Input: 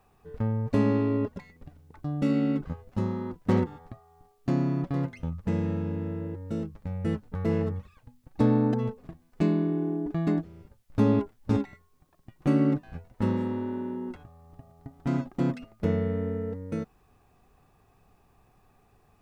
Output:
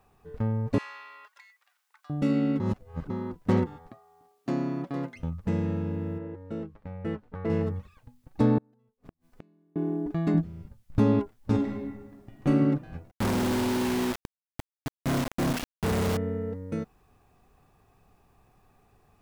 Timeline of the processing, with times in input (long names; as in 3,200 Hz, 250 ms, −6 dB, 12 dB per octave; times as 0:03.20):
0:00.78–0:02.10: high-pass filter 1,200 Hz 24 dB per octave
0:02.60–0:03.10: reverse
0:03.89–0:05.16: high-pass filter 220 Hz
0:06.18–0:07.50: bass and treble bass −7 dB, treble −14 dB
0:08.58–0:09.76: gate with flip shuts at −31 dBFS, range −39 dB
0:10.34–0:10.99: low shelf with overshoot 270 Hz +6.5 dB, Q 1.5
0:11.55–0:12.47: thrown reverb, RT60 1.4 s, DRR 0.5 dB
0:13.11–0:16.17: log-companded quantiser 2 bits